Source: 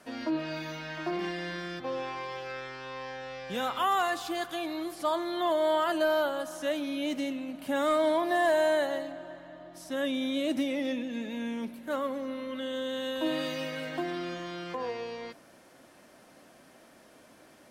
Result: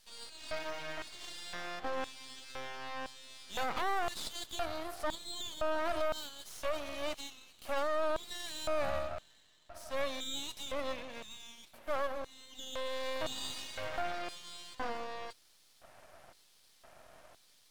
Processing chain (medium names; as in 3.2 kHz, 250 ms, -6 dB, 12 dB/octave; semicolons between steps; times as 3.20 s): LFO high-pass square 0.98 Hz 680–3900 Hz; half-wave rectifier; peak limiter -23 dBFS, peak gain reduction 10.5 dB